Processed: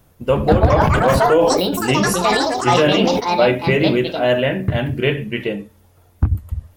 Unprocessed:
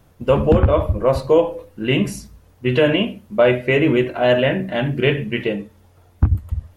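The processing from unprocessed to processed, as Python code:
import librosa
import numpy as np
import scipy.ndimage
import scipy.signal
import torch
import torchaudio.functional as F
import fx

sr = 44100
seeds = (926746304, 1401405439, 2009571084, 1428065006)

y = fx.high_shelf(x, sr, hz=8900.0, db=9.0)
y = fx.echo_pitch(y, sr, ms=279, semitones=6, count=3, db_per_echo=-3.0)
y = fx.sustainer(y, sr, db_per_s=26.0, at=(0.77, 3.19), fade=0.02)
y = y * librosa.db_to_amplitude(-1.0)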